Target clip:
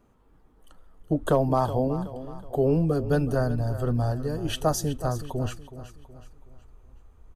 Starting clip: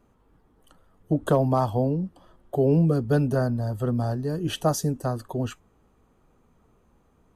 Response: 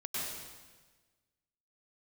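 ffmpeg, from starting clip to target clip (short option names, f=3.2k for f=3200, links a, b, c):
-filter_complex "[0:a]asubboost=boost=10.5:cutoff=55,asplit=2[a][b];[b]aecho=0:1:372|744|1116|1488:0.211|0.0888|0.0373|0.0157[c];[a][c]amix=inputs=2:normalize=0"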